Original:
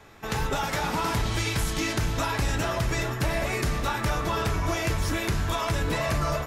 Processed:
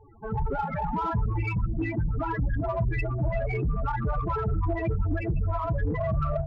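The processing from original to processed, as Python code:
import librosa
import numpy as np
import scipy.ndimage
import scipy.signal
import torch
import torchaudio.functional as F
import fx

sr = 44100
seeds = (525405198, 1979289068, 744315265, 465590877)

p1 = fx.rattle_buzz(x, sr, strikes_db=-29.0, level_db=-23.0)
p2 = fx.echo_diffused(p1, sr, ms=465, feedback_pct=41, wet_db=-8.0)
p3 = fx.spec_topn(p2, sr, count=8)
p4 = 10.0 ** (-32.5 / 20.0) * np.tanh(p3 / 10.0 ** (-32.5 / 20.0))
y = p3 + F.gain(torch.from_numpy(p4), -5.0).numpy()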